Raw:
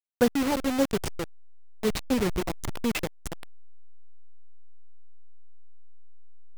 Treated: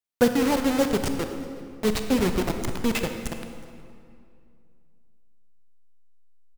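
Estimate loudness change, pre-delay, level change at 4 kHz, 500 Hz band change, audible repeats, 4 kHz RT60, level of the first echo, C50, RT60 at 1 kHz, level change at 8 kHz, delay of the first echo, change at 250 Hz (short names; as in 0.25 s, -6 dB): +3.0 dB, 24 ms, +3.5 dB, +3.5 dB, 1, 1.6 s, -22.5 dB, 6.5 dB, 2.3 s, +3.0 dB, 0.369 s, +3.5 dB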